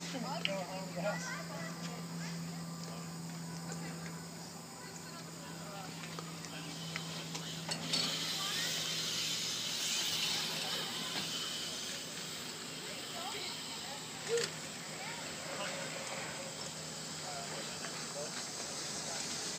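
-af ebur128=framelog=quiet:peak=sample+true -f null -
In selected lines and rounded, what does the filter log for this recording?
Integrated loudness:
  I:         -38.6 LUFS
  Threshold: -48.5 LUFS
Loudness range:
  LRA:        10.0 LU
  Threshold: -58.4 LUFS
  LRA low:   -44.3 LUFS
  LRA high:  -34.3 LUFS
Sample peak:
  Peak:      -16.0 dBFS
True peak:
  Peak:      -15.8 dBFS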